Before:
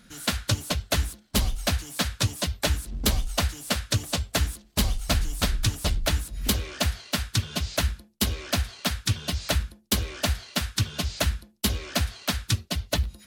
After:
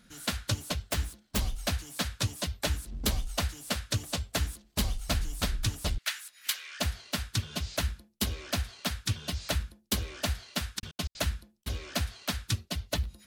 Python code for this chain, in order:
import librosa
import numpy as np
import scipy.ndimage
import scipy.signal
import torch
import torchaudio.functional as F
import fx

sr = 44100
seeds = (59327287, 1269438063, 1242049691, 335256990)

y = fx.self_delay(x, sr, depth_ms=0.1, at=(0.91, 1.39))
y = fx.highpass_res(y, sr, hz=1700.0, q=1.6, at=(5.98, 6.8))
y = fx.step_gate(y, sr, bpm=187, pattern='xx.x.x.xxxx', floor_db=-60.0, edge_ms=4.5, at=(10.78, 11.66), fade=0.02)
y = y * 10.0 ** (-5.5 / 20.0)